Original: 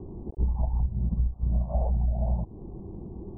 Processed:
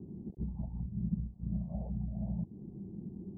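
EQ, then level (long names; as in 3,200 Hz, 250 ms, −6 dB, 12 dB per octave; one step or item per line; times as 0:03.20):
resonant band-pass 190 Hz, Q 2.3
+1.0 dB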